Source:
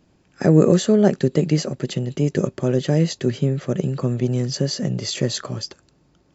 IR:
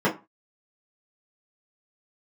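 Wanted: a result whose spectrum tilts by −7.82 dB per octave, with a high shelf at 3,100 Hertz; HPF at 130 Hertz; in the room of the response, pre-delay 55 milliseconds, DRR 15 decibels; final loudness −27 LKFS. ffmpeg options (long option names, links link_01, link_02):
-filter_complex "[0:a]highpass=130,highshelf=frequency=3100:gain=-8.5,asplit=2[link_01][link_02];[1:a]atrim=start_sample=2205,adelay=55[link_03];[link_02][link_03]afir=irnorm=-1:irlink=0,volume=-31dB[link_04];[link_01][link_04]amix=inputs=2:normalize=0,volume=-6dB"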